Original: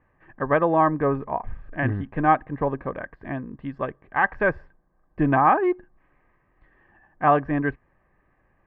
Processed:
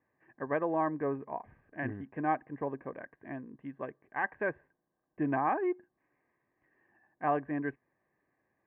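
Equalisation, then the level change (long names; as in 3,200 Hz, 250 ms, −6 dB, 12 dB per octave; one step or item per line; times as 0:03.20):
loudspeaker in its box 170–2,500 Hz, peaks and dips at 180 Hz −5 dB, 550 Hz −3 dB, 850 Hz −3 dB, 1,300 Hz −10 dB
−8.5 dB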